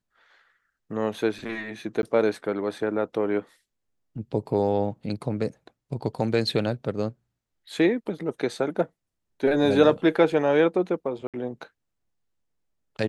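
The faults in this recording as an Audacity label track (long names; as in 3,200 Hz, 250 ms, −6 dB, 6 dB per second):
2.020000	2.030000	drop-out
11.270000	11.340000	drop-out 67 ms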